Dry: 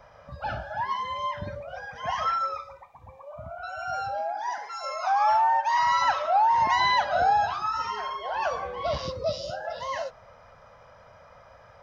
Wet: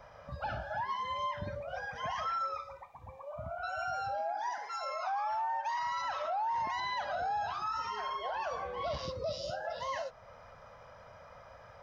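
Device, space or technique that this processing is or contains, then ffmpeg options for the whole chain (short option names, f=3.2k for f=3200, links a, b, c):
stacked limiters: -filter_complex "[0:a]alimiter=limit=-17.5dB:level=0:latency=1:release=151,alimiter=limit=-21dB:level=0:latency=1:release=21,alimiter=level_in=2.5dB:limit=-24dB:level=0:latency=1:release=337,volume=-2.5dB,asettb=1/sr,asplit=3[a][b][c];[a]atrim=end=4.764[d];[b]atrim=start=4.76:end=5.32,asetpts=PTS-STARTPTS,afade=t=in:d=0.004:c=qsin,afade=t=out:st=0.556:d=0.004:c=qsin,lowpass=5.1k[e];[c]atrim=start=5.316[f];[d][e]acrossfade=d=0.004:c1=hsin:c2=qsin[g];[g][f]acrossfade=d=0.004:c1=qsin:c2=hsin,volume=-1.5dB"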